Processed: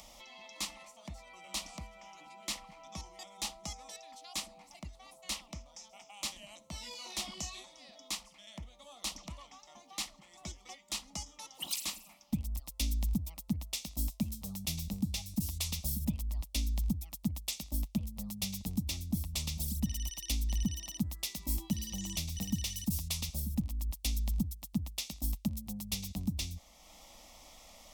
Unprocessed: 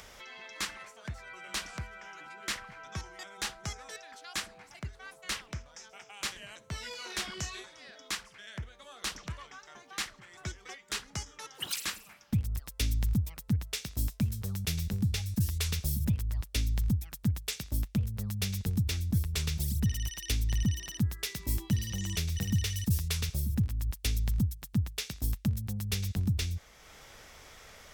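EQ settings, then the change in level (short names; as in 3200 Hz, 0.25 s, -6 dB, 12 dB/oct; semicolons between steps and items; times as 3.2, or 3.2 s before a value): fixed phaser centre 420 Hz, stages 6; 0.0 dB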